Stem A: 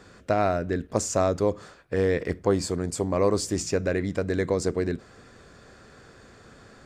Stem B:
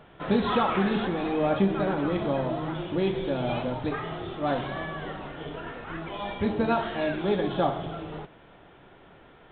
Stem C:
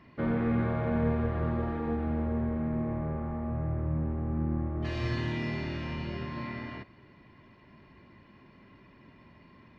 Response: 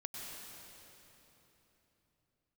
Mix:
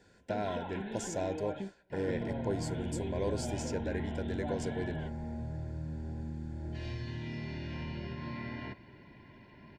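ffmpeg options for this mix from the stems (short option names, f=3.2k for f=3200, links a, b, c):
-filter_complex "[0:a]volume=-12dB,asplit=2[a][b];[1:a]acompressor=threshold=-28dB:ratio=6,volume=-9dB[c];[2:a]acrossover=split=240|3000[d][e][f];[e]acompressor=threshold=-40dB:ratio=6[g];[d][g][f]amix=inputs=3:normalize=0,acompressor=threshold=-37dB:ratio=10,adelay=1900,volume=1.5dB[h];[b]apad=whole_len=419400[i];[c][i]sidechaingate=range=-33dB:threshold=-53dB:ratio=16:detection=peak[j];[a][j][h]amix=inputs=3:normalize=0,asuperstop=centerf=1200:order=20:qfactor=4.1"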